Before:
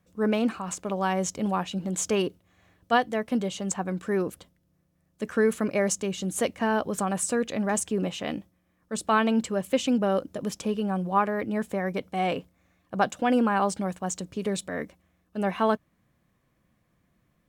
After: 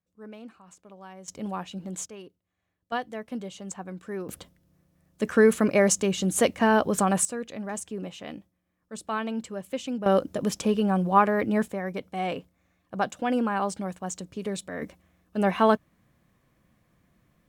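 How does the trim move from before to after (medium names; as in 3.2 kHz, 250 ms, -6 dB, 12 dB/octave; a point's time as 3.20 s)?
-19 dB
from 1.28 s -6 dB
from 2.06 s -18.5 dB
from 2.92 s -8 dB
from 4.29 s +4.5 dB
from 7.25 s -7.5 dB
from 10.06 s +4 dB
from 11.68 s -3 dB
from 14.82 s +3.5 dB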